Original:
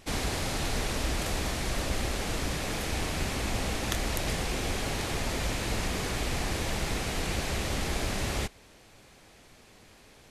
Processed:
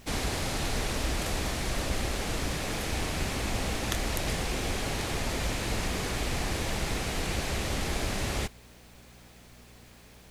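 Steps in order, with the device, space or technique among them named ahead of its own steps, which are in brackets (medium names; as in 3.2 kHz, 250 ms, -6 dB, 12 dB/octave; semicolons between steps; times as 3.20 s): video cassette with head-switching buzz (mains buzz 60 Hz, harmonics 4, -56 dBFS; white noise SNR 33 dB)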